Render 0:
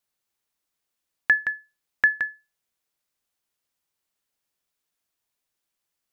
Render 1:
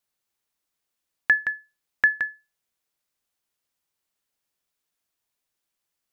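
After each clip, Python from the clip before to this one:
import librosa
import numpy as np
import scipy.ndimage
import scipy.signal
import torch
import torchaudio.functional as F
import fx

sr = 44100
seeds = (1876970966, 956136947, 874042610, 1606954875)

y = x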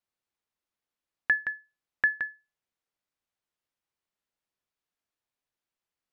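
y = fx.lowpass(x, sr, hz=2900.0, slope=6)
y = y * librosa.db_to_amplitude(-4.0)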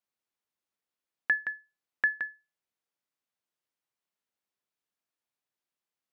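y = scipy.signal.sosfilt(scipy.signal.butter(2, 120.0, 'highpass', fs=sr, output='sos'), x)
y = y * librosa.db_to_amplitude(-2.0)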